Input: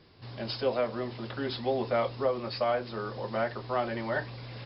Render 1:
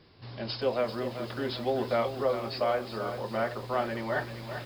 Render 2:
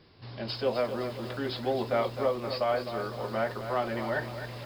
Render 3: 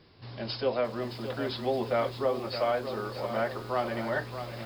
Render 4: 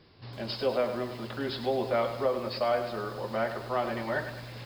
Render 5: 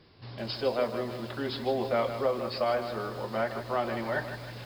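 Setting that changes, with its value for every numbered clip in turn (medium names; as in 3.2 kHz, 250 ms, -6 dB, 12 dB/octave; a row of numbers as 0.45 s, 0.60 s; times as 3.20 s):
bit-crushed delay, time: 390 ms, 257 ms, 619 ms, 103 ms, 156 ms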